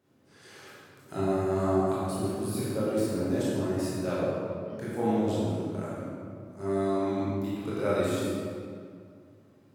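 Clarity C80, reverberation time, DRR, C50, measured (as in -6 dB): -1.5 dB, 2.2 s, -9.0 dB, -4.0 dB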